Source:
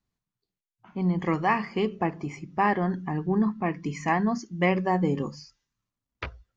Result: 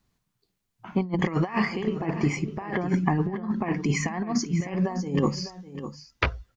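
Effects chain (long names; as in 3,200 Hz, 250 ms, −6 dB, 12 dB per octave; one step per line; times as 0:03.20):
compressor whose output falls as the input rises −30 dBFS, ratio −0.5
single-tap delay 603 ms −12.5 dB
level +5.5 dB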